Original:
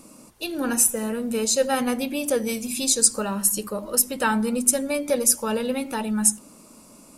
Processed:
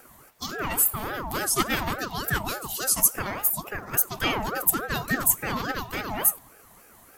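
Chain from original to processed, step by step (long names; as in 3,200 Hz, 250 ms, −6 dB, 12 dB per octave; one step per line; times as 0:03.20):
bass and treble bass −5 dB, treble +1 dB
formants moved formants +6 semitones
ring modulator whose carrier an LFO sweeps 730 Hz, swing 45%, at 3.5 Hz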